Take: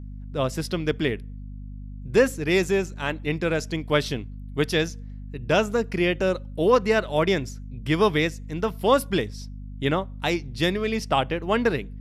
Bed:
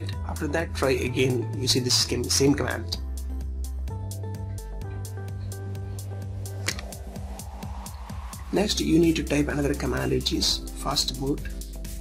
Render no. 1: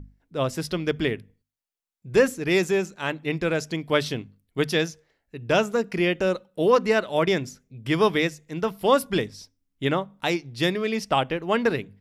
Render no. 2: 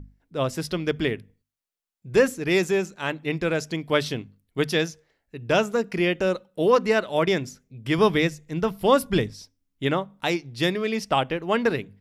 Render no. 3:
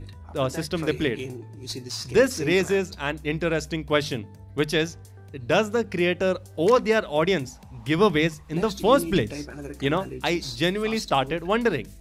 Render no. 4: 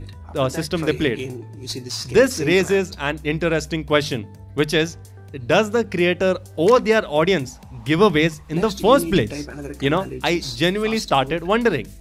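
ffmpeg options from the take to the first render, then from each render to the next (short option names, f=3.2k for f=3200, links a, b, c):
-af "bandreject=f=50:t=h:w=6,bandreject=f=100:t=h:w=6,bandreject=f=150:t=h:w=6,bandreject=f=200:t=h:w=6,bandreject=f=250:t=h:w=6"
-filter_complex "[0:a]asettb=1/sr,asplit=3[a][b][c];[a]atrim=end=7.984[d];[b]atrim=start=7.98:end=9.33,asetpts=PTS-STARTPTS,afade=t=in:d=0.004:c=qsin,afade=t=out:st=1.346:d=0.004:c=qsin,lowshelf=f=130:g=11.5[e];[c]atrim=start=9.326[f];[d][e]acrossfade=d=0.004:c1=hsin:c2=qsin[g];[g][f]acrossfade=d=0.004:c1=qsin:c2=hsin"
-filter_complex "[1:a]volume=-11.5dB[a];[0:a][a]amix=inputs=2:normalize=0"
-af "volume=4.5dB,alimiter=limit=-3dB:level=0:latency=1"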